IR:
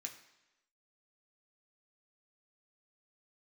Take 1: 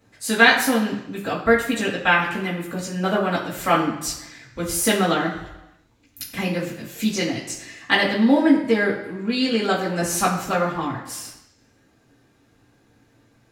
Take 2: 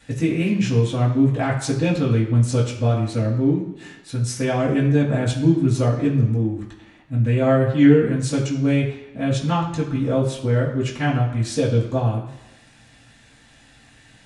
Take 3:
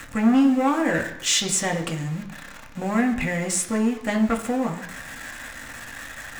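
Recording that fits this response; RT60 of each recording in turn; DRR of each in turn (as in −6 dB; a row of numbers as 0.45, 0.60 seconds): 3; 1.0, 1.0, 1.0 seconds; −14.5, −8.0, 1.0 decibels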